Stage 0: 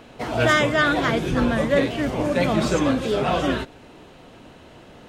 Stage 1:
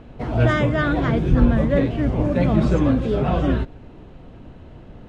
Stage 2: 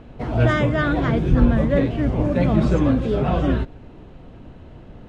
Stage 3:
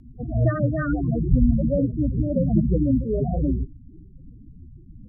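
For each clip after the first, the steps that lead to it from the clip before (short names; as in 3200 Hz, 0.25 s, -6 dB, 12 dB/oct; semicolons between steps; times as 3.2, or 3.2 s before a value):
RIAA curve playback; gain -3.5 dB
nothing audible
loudest bins only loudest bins 8; rotary speaker horn 8 Hz, later 1.1 Hz, at 0.98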